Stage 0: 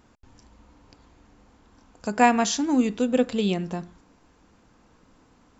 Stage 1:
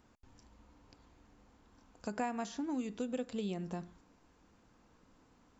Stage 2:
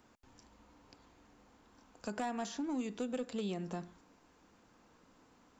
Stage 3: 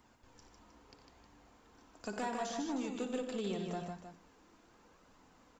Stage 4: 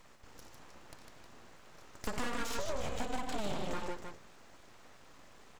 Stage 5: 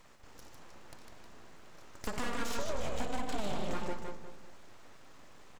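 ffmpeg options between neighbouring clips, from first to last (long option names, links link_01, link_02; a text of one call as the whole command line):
ffmpeg -i in.wav -filter_complex "[0:a]acrossover=split=1900|4700[link_01][link_02][link_03];[link_01]acompressor=threshold=-27dB:ratio=4[link_04];[link_02]acompressor=threshold=-50dB:ratio=4[link_05];[link_03]acompressor=threshold=-49dB:ratio=4[link_06];[link_04][link_05][link_06]amix=inputs=3:normalize=0,volume=-8dB" out.wav
ffmpeg -i in.wav -filter_complex "[0:a]lowshelf=frequency=140:gain=-9.5,acrossover=split=210[link_01][link_02];[link_02]asoftclip=type=tanh:threshold=-34.5dB[link_03];[link_01][link_03]amix=inputs=2:normalize=0,volume=3dB" out.wav
ffmpeg -i in.wav -filter_complex "[0:a]flanger=delay=0.9:depth=2.3:regen=53:speed=0.77:shape=triangular,asplit=2[link_01][link_02];[link_02]aecho=0:1:59|89|152|312:0.266|0.237|0.562|0.282[link_03];[link_01][link_03]amix=inputs=2:normalize=0,volume=4dB" out.wav
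ffmpeg -i in.wav -af "acompressor=threshold=-39dB:ratio=4,aeval=exprs='abs(val(0))':channel_layout=same,volume=8.5dB" out.wav
ffmpeg -i in.wav -filter_complex "[0:a]asplit=2[link_01][link_02];[link_02]adelay=196,lowpass=frequency=940:poles=1,volume=-5.5dB,asplit=2[link_03][link_04];[link_04]adelay=196,lowpass=frequency=940:poles=1,volume=0.42,asplit=2[link_05][link_06];[link_06]adelay=196,lowpass=frequency=940:poles=1,volume=0.42,asplit=2[link_07][link_08];[link_08]adelay=196,lowpass=frequency=940:poles=1,volume=0.42,asplit=2[link_09][link_10];[link_10]adelay=196,lowpass=frequency=940:poles=1,volume=0.42[link_11];[link_01][link_03][link_05][link_07][link_09][link_11]amix=inputs=6:normalize=0" out.wav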